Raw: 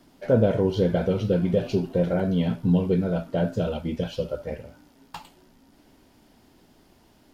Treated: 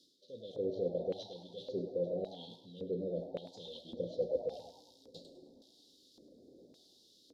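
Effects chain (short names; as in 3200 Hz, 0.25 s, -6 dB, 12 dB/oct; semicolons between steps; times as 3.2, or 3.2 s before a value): dynamic EQ 3800 Hz, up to +7 dB, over -53 dBFS, Q 1.1; reverse; compressor 6:1, threshold -35 dBFS, peak gain reduction 19 dB; reverse; Chebyshev band-stop 530–3700 Hz, order 5; on a send at -11 dB: reverb RT60 1.7 s, pre-delay 4 ms; on the sum: LFO band-pass square 0.89 Hz 760–2800 Hz; frequency-shifting echo 0.102 s, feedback 42%, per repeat +100 Hz, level -14 dB; gain +13.5 dB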